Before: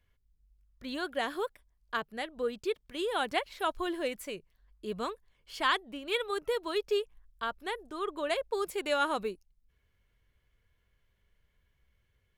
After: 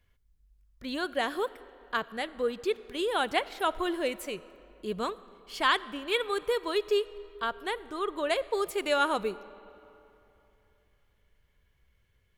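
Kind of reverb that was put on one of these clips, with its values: algorithmic reverb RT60 3.1 s, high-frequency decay 0.65×, pre-delay 10 ms, DRR 17.5 dB; trim +3 dB

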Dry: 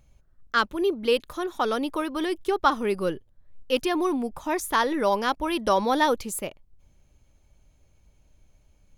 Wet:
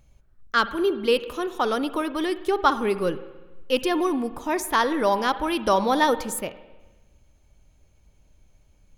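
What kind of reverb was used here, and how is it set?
spring tank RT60 1.2 s, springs 51/56 ms, chirp 50 ms, DRR 13 dB; trim +1.5 dB

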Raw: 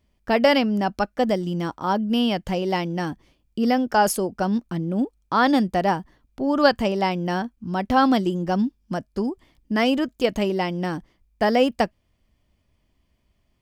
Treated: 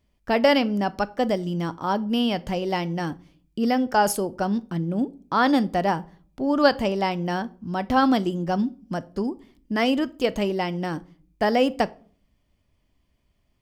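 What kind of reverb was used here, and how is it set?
simulated room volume 410 m³, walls furnished, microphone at 0.32 m; trim -1.5 dB

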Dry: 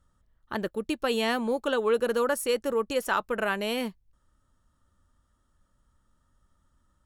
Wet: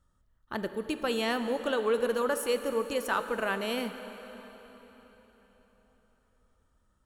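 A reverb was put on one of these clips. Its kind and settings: plate-style reverb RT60 4.3 s, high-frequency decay 0.85×, DRR 8.5 dB; trim -3 dB

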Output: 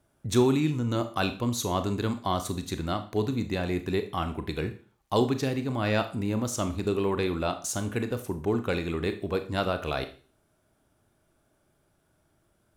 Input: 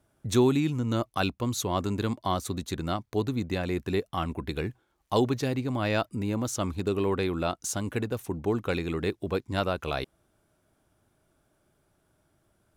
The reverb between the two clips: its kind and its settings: Schroeder reverb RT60 0.4 s, combs from 26 ms, DRR 8.5 dB

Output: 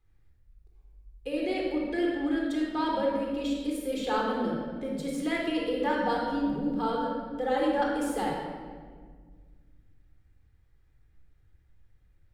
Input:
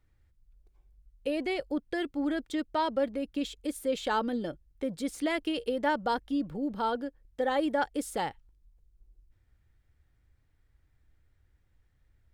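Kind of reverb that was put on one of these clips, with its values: simulated room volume 2200 m³, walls mixed, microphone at 3.9 m; trim -5 dB

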